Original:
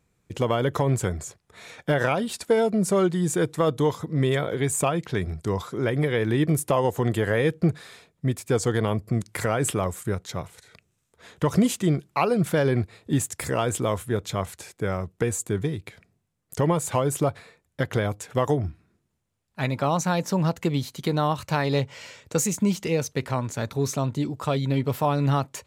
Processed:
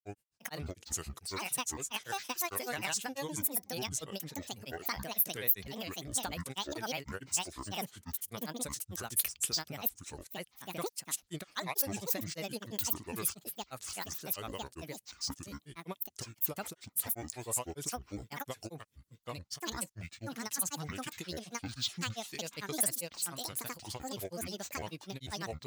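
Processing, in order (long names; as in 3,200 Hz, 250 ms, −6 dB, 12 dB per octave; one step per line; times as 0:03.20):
granular cloud, grains 20 per second, spray 821 ms, pitch spread up and down by 12 semitones
first-order pre-emphasis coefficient 0.9
level +1.5 dB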